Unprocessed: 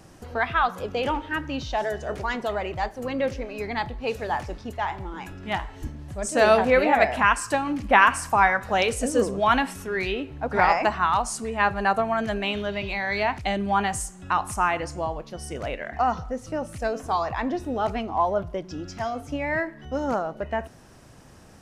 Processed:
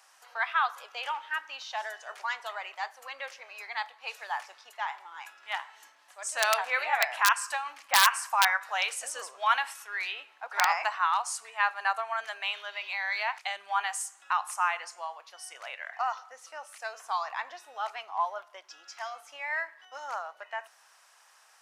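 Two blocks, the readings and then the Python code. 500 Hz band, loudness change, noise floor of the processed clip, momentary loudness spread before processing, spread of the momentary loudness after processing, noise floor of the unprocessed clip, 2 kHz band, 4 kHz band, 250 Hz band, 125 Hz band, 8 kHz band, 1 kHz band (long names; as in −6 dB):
−16.5 dB, −5.5 dB, −61 dBFS, 12 LU, 16 LU, −48 dBFS, −3.5 dB, +0.5 dB, below −40 dB, below −40 dB, 0.0 dB, −6.0 dB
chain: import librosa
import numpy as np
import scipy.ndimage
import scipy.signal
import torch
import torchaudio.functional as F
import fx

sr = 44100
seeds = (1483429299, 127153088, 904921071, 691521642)

y = (np.mod(10.0 ** (7.0 / 20.0) * x + 1.0, 2.0) - 1.0) / 10.0 ** (7.0 / 20.0)
y = scipy.signal.sosfilt(scipy.signal.butter(4, 890.0, 'highpass', fs=sr, output='sos'), y)
y = y * 10.0 ** (-3.0 / 20.0)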